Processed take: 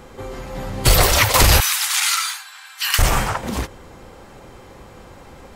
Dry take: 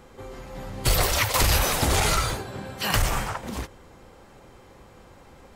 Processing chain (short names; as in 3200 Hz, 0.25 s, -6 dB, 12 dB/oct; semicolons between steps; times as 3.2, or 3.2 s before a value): 1.6–2.99 Bessel high-pass 1800 Hz, order 8; gain +8 dB